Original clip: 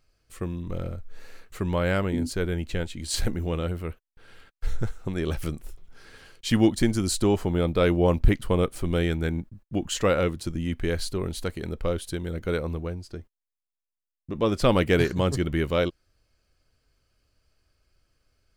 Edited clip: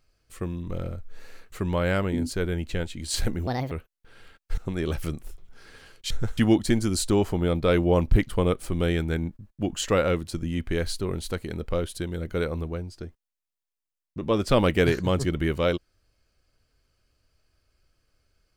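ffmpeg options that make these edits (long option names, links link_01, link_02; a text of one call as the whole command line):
ffmpeg -i in.wav -filter_complex "[0:a]asplit=6[link_01][link_02][link_03][link_04][link_05][link_06];[link_01]atrim=end=3.474[link_07];[link_02]atrim=start=3.47:end=3.84,asetpts=PTS-STARTPTS,asetrate=66591,aresample=44100[link_08];[link_03]atrim=start=3.836:end=4.702[link_09];[link_04]atrim=start=4.968:end=6.502[link_10];[link_05]atrim=start=4.698:end=4.972[link_11];[link_06]atrim=start=6.498[link_12];[link_07][link_08]acrossfade=duration=0.004:curve1=hsin:curve2=hsin[link_13];[link_13][link_09]acrossfade=duration=0.004:curve1=hsin:curve2=hsin[link_14];[link_14][link_10]acrossfade=duration=0.004:curve1=hsin:curve2=hsin[link_15];[link_15][link_11]acrossfade=duration=0.004:curve1=hsin:curve2=hsin[link_16];[link_16][link_12]acrossfade=duration=0.004:curve1=hsin:curve2=hsin" out.wav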